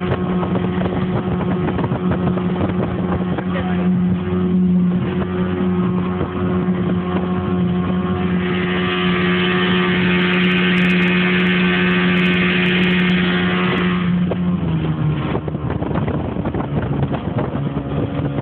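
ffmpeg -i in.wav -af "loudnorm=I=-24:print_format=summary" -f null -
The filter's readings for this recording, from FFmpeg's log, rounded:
Input Integrated:    -18.1 LUFS
Input True Peak:      -5.8 dBTP
Input LRA:             6.2 LU
Input Threshold:     -28.1 LUFS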